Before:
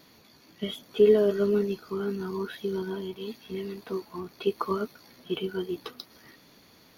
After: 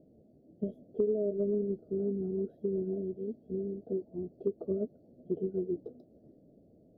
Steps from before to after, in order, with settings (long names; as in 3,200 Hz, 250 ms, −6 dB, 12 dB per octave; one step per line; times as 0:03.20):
elliptic low-pass filter 640 Hz, stop band 40 dB
downward compressor 6 to 1, threshold −27 dBFS, peak gain reduction 11.5 dB